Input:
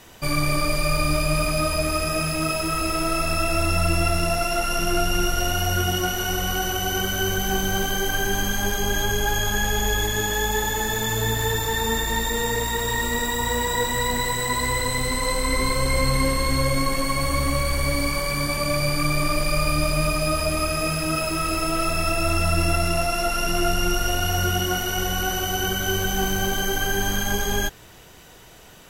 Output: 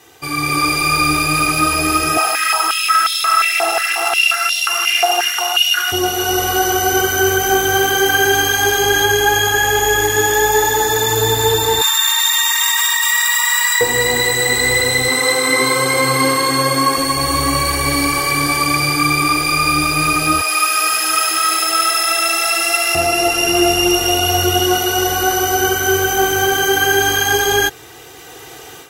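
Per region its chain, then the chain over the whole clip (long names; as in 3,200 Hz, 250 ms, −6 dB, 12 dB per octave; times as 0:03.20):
0:02.17–0:05.92: hard clipping −18 dBFS + high-pass on a step sequencer 5.6 Hz 750–3,500 Hz
0:11.81–0:13.81: Butterworth high-pass 1,000 Hz 72 dB per octave + envelope flattener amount 100%
0:15.08–0:16.98: high-pass filter 130 Hz 24 dB per octave + parametric band 1,200 Hz +5.5 dB 0.7 octaves
0:20.41–0:22.95: high-pass filter 810 Hz + hard clipping −15.5 dBFS + delay with a high-pass on its return 73 ms, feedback 74%, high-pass 1,600 Hz, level −3 dB
whole clip: high-pass filter 130 Hz 12 dB per octave; comb filter 2.5 ms, depth 96%; automatic gain control; level −1 dB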